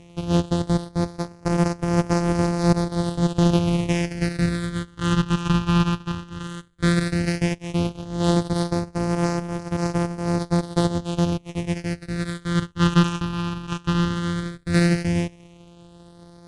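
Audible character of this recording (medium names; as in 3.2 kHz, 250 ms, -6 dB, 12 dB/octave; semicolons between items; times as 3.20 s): a buzz of ramps at a fixed pitch in blocks of 256 samples; phasing stages 8, 0.13 Hz, lowest notch 550–2800 Hz; IMA ADPCM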